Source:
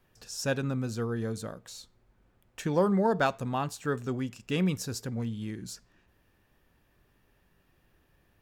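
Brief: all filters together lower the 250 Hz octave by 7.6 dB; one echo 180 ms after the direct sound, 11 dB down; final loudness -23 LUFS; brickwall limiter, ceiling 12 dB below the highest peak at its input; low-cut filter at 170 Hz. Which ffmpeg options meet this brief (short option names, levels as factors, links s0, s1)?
-af "highpass=170,equalizer=f=250:t=o:g=-8.5,alimiter=level_in=1.06:limit=0.0631:level=0:latency=1,volume=0.944,aecho=1:1:180:0.282,volume=5.31"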